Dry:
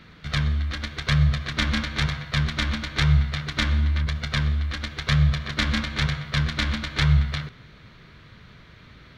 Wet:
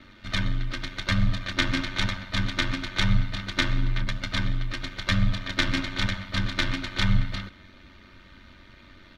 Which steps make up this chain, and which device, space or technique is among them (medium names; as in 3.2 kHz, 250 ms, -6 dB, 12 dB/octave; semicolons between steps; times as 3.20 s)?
ring-modulated robot voice (ring modulator 47 Hz; comb 3.3 ms, depth 67%)